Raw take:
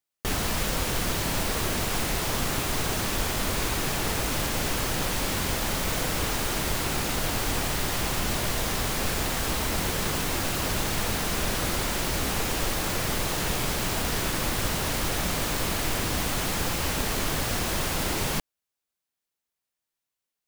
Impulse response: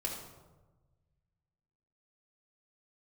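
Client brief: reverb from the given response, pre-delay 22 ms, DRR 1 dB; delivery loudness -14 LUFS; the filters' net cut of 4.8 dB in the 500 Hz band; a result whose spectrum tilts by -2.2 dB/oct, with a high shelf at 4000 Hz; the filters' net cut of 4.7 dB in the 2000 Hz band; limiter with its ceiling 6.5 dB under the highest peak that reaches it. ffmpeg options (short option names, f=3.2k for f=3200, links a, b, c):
-filter_complex "[0:a]equalizer=f=500:t=o:g=-6,equalizer=f=2k:t=o:g=-7.5,highshelf=f=4k:g=6.5,alimiter=limit=-18.5dB:level=0:latency=1,asplit=2[a][b];[1:a]atrim=start_sample=2205,adelay=22[c];[b][c]afir=irnorm=-1:irlink=0,volume=-3.5dB[d];[a][d]amix=inputs=2:normalize=0,volume=10.5dB"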